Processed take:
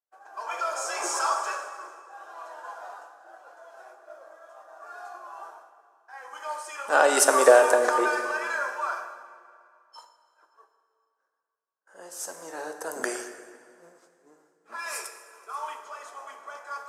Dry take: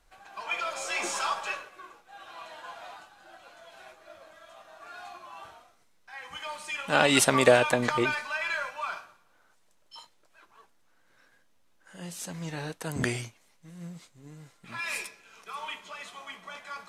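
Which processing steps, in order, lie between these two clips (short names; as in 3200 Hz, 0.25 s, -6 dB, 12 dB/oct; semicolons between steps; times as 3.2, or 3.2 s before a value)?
HPF 390 Hz 24 dB/oct; band shelf 2900 Hz -13 dB 1.3 oct; echo with dull and thin repeats by turns 0.115 s, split 1700 Hz, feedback 54%, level -13 dB; expander -52 dBFS; plate-style reverb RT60 2.3 s, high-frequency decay 0.95×, DRR 7 dB; mismatched tape noise reduction decoder only; gain +4 dB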